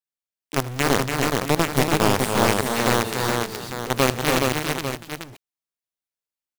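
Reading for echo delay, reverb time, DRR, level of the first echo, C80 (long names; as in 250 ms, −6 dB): 80 ms, no reverb audible, no reverb audible, −17.5 dB, no reverb audible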